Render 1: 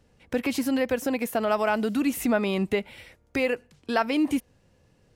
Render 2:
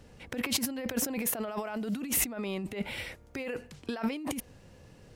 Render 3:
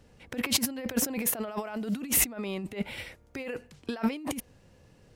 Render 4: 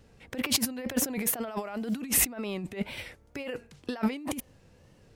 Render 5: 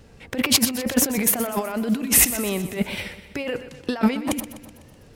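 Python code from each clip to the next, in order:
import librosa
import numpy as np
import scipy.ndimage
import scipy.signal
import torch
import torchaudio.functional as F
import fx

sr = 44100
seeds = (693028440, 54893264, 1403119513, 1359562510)

y1 = fx.over_compress(x, sr, threshold_db=-34.0, ratio=-1.0)
y2 = fx.upward_expand(y1, sr, threshold_db=-43.0, expansion=1.5)
y2 = y2 * 10.0 ** (4.5 / 20.0)
y3 = fx.wow_flutter(y2, sr, seeds[0], rate_hz=2.1, depth_cents=92.0)
y4 = fx.echo_feedback(y3, sr, ms=125, feedback_pct=55, wet_db=-13.5)
y4 = y4 * 10.0 ** (8.5 / 20.0)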